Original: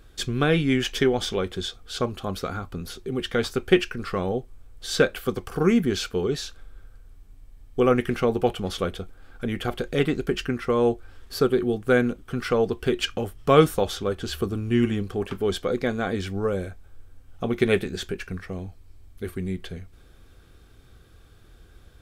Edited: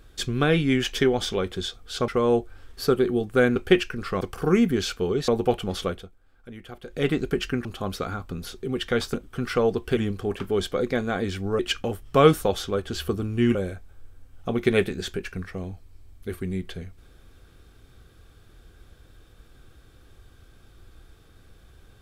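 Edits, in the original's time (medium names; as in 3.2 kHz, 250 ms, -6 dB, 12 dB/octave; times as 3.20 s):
2.08–3.57 s: swap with 10.61–12.09 s
4.22–5.35 s: delete
6.42–8.24 s: delete
8.79–10.06 s: dip -13.5 dB, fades 0.27 s
14.88–16.50 s: move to 12.92 s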